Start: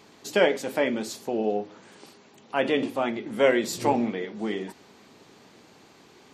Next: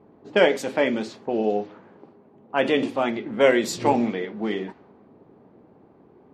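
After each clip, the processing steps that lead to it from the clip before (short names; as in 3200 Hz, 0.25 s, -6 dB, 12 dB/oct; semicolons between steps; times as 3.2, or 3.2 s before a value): low-pass opened by the level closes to 620 Hz, open at -21 dBFS; gain +3 dB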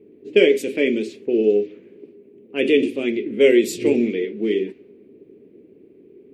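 EQ curve 150 Hz 0 dB, 410 Hz +14 dB, 830 Hz -20 dB, 1400 Hz -12 dB, 2400 Hz +11 dB, 4300 Hz +1 dB, 6200 Hz +2 dB, 9700 Hz +10 dB; gain -4 dB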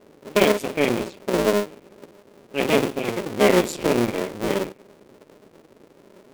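cycle switcher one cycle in 2, muted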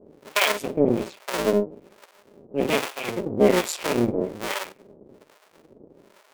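harmonic tremolo 1.2 Hz, depth 100%, crossover 720 Hz; gain +3 dB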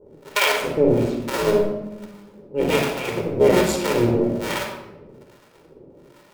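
reverb RT60 0.95 s, pre-delay 27 ms, DRR 2 dB; gain -1 dB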